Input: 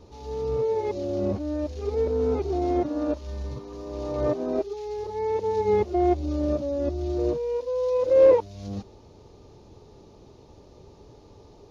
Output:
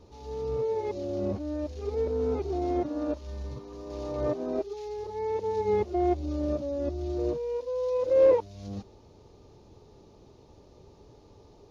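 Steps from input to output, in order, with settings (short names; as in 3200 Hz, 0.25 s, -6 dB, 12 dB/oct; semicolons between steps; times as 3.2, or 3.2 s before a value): 3.9–4.89 mismatched tape noise reduction encoder only; gain -4 dB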